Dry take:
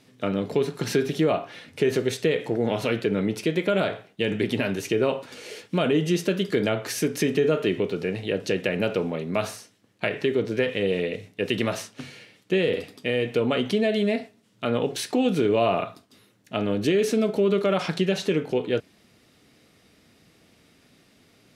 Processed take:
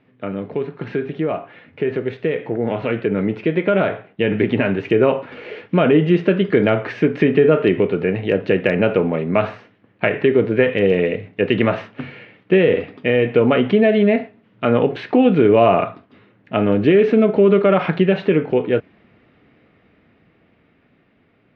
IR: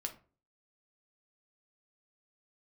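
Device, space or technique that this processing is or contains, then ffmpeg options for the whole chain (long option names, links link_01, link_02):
action camera in a waterproof case: -af "lowpass=frequency=2500:width=0.5412,lowpass=frequency=2500:width=1.3066,dynaudnorm=framelen=730:gausssize=9:maxgain=14dB" -ar 48000 -c:a aac -b:a 128k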